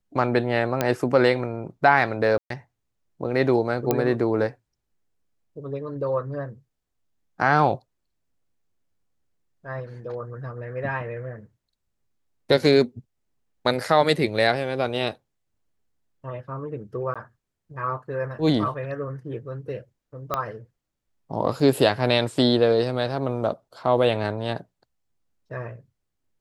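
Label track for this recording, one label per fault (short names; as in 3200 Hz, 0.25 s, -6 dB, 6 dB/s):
0.810000	0.810000	pop -7 dBFS
2.380000	2.500000	gap 0.123 s
3.910000	3.910000	pop -7 dBFS
17.140000	17.160000	gap 16 ms
20.340000	20.340000	pop -11 dBFS
21.600000	21.600000	gap 2.4 ms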